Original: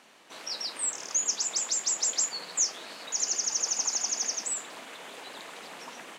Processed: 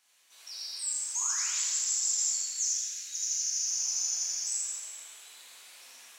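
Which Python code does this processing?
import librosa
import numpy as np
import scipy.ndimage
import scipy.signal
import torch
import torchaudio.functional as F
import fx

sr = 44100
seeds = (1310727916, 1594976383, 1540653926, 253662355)

p1 = librosa.effects.preemphasis(x, coef=0.97, zi=[0.0])
p2 = fx.spec_paint(p1, sr, seeds[0], shape='rise', start_s=1.15, length_s=0.61, low_hz=870.0, high_hz=8100.0, level_db=-43.0)
p3 = fx.band_shelf(p2, sr, hz=740.0, db=-12.5, octaves=1.7, at=(2.36, 3.67))
p4 = p3 + fx.echo_single(p3, sr, ms=84, db=-5.0, dry=0)
p5 = fx.rev_plate(p4, sr, seeds[1], rt60_s=1.8, hf_ratio=0.9, predelay_ms=0, drr_db=-6.5)
y = p5 * 10.0 ** (-8.0 / 20.0)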